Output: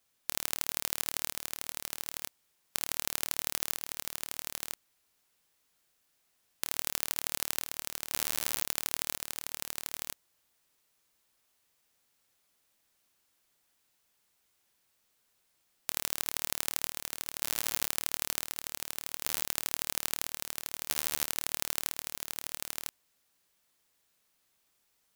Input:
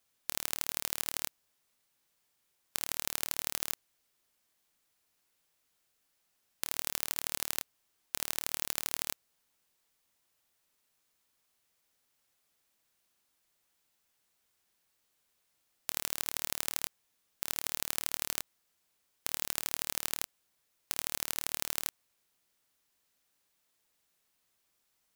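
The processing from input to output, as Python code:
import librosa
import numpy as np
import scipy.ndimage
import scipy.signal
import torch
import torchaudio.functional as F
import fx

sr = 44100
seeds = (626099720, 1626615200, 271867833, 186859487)

y = x + 10.0 ** (-5.0 / 20.0) * np.pad(x, (int(1001 * sr / 1000.0), 0))[:len(x)]
y = y * librosa.db_to_amplitude(1.5)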